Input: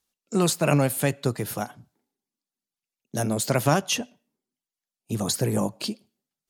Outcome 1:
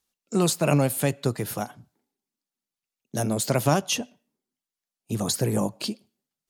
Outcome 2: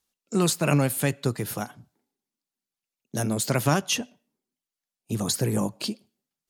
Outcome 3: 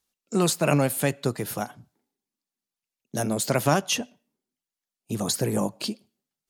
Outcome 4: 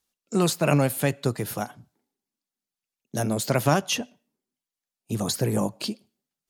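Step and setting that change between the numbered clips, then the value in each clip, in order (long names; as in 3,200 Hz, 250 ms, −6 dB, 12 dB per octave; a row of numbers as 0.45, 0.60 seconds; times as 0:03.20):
dynamic equaliser, frequency: 1,700, 650, 100, 8,400 Hertz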